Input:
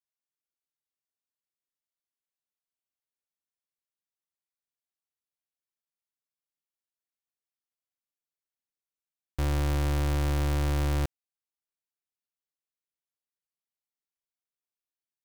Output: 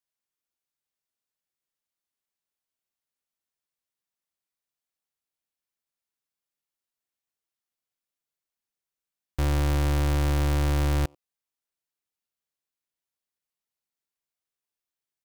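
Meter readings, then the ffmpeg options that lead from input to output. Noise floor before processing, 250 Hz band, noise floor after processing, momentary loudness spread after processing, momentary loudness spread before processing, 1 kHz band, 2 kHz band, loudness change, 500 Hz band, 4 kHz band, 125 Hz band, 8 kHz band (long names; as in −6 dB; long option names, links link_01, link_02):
below −85 dBFS, +3.0 dB, below −85 dBFS, 6 LU, 6 LU, +3.0 dB, +3.0 dB, +3.0 dB, +3.0 dB, +3.0 dB, +3.0 dB, +3.0 dB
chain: -filter_complex "[0:a]asplit=2[link_01][link_02];[link_02]adelay=90,highpass=300,lowpass=3400,asoftclip=type=hard:threshold=-34dB,volume=-20dB[link_03];[link_01][link_03]amix=inputs=2:normalize=0,volume=3dB"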